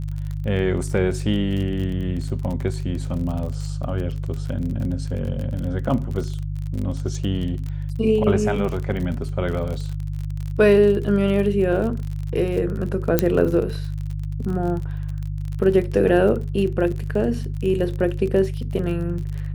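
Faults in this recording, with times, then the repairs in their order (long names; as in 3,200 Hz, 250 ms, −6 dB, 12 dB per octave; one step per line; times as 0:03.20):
surface crackle 34 per second −28 dBFS
mains hum 50 Hz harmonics 3 −27 dBFS
0:13.19: click −3 dBFS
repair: click removal
hum removal 50 Hz, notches 3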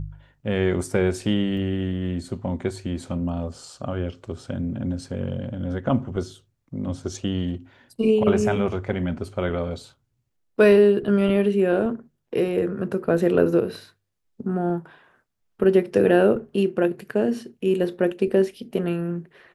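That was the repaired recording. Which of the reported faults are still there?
none of them is left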